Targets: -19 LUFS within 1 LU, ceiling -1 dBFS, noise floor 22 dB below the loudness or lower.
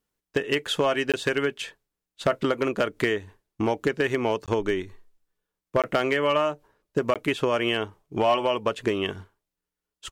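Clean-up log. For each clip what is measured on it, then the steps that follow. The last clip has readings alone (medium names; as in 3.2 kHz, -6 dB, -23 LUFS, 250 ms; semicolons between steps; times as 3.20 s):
clipped samples 0.2%; clipping level -13.5 dBFS; dropouts 4; longest dropout 17 ms; loudness -26.0 LUFS; peak level -13.5 dBFS; loudness target -19.0 LUFS
-> clip repair -13.5 dBFS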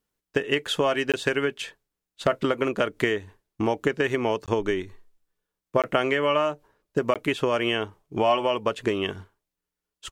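clipped samples 0.0%; dropouts 4; longest dropout 17 ms
-> interpolate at 1.12/4.46/5.82/7.14 s, 17 ms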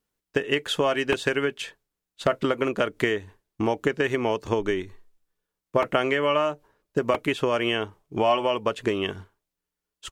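dropouts 0; loudness -25.5 LUFS; peak level -6.0 dBFS; loudness target -19.0 LUFS
-> trim +6.5 dB; peak limiter -1 dBFS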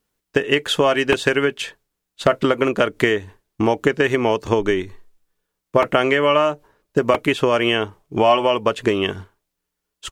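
loudness -19.0 LUFS; peak level -1.0 dBFS; noise floor -80 dBFS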